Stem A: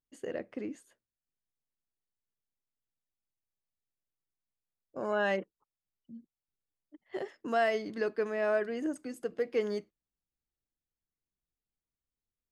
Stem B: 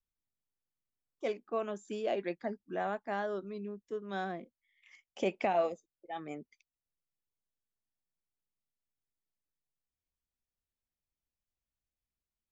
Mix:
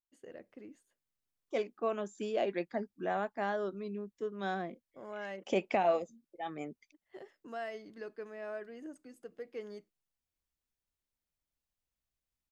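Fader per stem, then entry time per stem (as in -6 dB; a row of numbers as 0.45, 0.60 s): -12.5, +1.0 dB; 0.00, 0.30 s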